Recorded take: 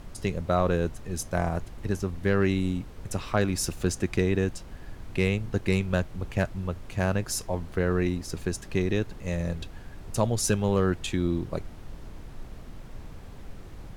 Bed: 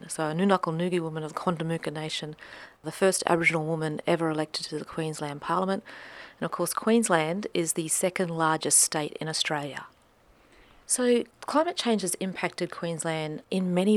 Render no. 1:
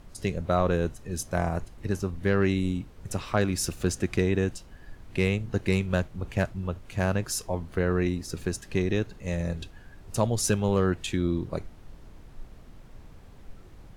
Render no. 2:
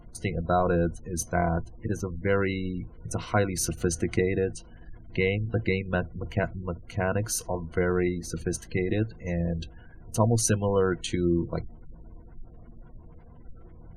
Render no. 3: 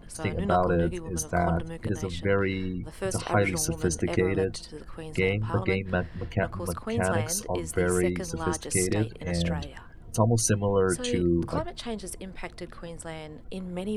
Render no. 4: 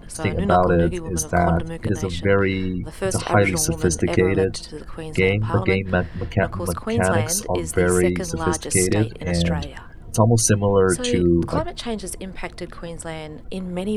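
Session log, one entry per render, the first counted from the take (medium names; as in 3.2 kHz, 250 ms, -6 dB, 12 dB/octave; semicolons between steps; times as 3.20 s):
noise print and reduce 6 dB
spectral gate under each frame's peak -30 dB strong; rippled EQ curve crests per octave 1.9, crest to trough 11 dB
add bed -9 dB
trim +7 dB; peak limiter -3 dBFS, peak gain reduction 1 dB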